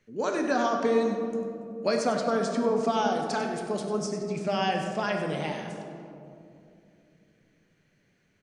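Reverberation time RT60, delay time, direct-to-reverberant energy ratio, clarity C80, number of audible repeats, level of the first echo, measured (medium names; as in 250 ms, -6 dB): 2.7 s, 97 ms, 2.0 dB, 5.0 dB, 1, -11.0 dB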